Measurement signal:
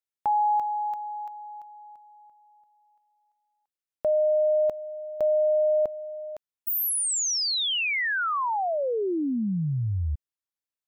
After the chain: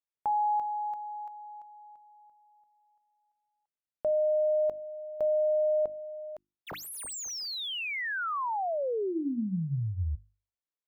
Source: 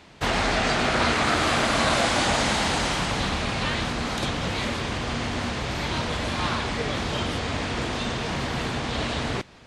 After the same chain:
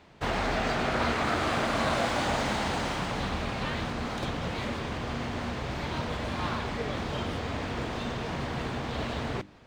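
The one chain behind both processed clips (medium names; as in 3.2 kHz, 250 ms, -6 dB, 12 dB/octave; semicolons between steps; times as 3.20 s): median filter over 3 samples; treble shelf 2.1 kHz -7.5 dB; hum notches 50/100/150/200/250/300/350 Hz; trim -3.5 dB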